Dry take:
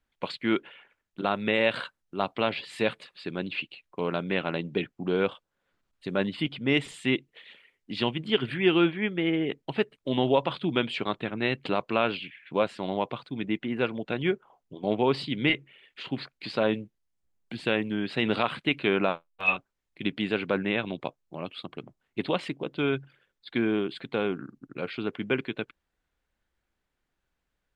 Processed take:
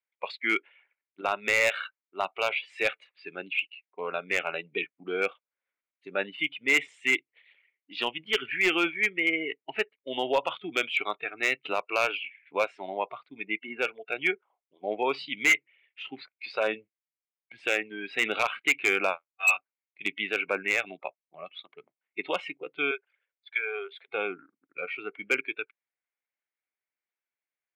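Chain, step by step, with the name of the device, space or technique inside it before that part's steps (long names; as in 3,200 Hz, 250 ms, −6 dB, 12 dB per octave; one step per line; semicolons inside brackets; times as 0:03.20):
0:22.91–0:24.08: elliptic high-pass filter 410 Hz, stop band 40 dB
noise reduction from a noise print of the clip's start 15 dB
megaphone (band-pass filter 480–3,900 Hz; parametric band 2,200 Hz +12 dB 0.41 octaves; hard clipping −16 dBFS, distortion −14 dB)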